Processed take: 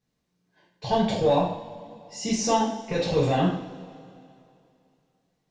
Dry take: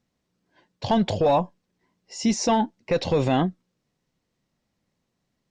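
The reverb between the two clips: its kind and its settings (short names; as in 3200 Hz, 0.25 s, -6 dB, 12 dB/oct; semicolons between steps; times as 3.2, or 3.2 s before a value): two-slope reverb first 0.6 s, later 2.7 s, from -19 dB, DRR -7 dB; gain -8.5 dB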